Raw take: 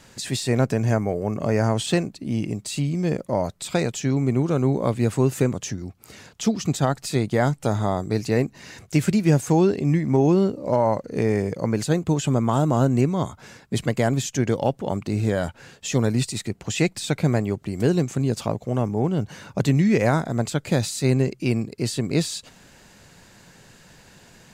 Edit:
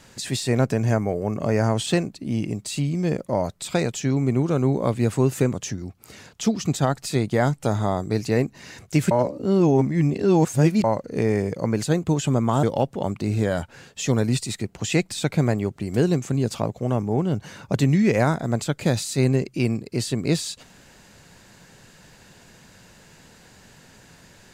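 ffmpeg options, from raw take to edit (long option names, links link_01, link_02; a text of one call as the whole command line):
ffmpeg -i in.wav -filter_complex "[0:a]asplit=4[link_01][link_02][link_03][link_04];[link_01]atrim=end=9.112[link_05];[link_02]atrim=start=9.108:end=10.842,asetpts=PTS-STARTPTS,areverse[link_06];[link_03]atrim=start=10.838:end=12.632[link_07];[link_04]atrim=start=14.488[link_08];[link_05][link_06]acrossfade=duration=0.004:curve1=hsin:curve2=hsin[link_09];[link_09][link_07]acrossfade=duration=0.004:curve1=hsin:curve2=hsin[link_10];[link_10][link_08]acrossfade=duration=0.004:curve1=hsin:curve2=hsin" out.wav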